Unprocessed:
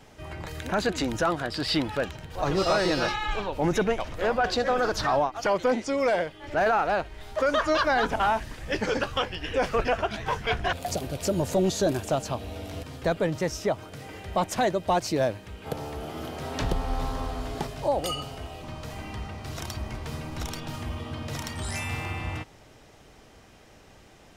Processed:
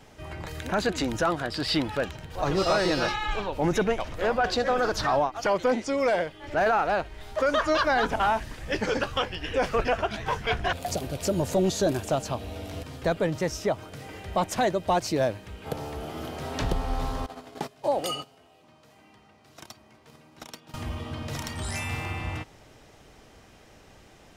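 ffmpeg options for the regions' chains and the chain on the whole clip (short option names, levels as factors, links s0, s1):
-filter_complex "[0:a]asettb=1/sr,asplit=3[s0][s1][s2];[s0]atrim=end=17.264[s3];[s1]atrim=start=17.26:end=20.74,asetpts=PTS-STARTPTS,afade=t=in:d=0.004:c=qsin,afade=t=out:st=3.476:d=0.004:c=qsin,highpass=180,agate=range=0.158:threshold=0.0158:ratio=16:release=100:detection=peak[s4];[s2]atrim=start=20.736[s5];[s3][s4]acrossfade=d=0.004:c1=hsin:c2=qsin[s6];[s6][s5]acrossfade=d=0.004:c1=qsin:c2=hsin"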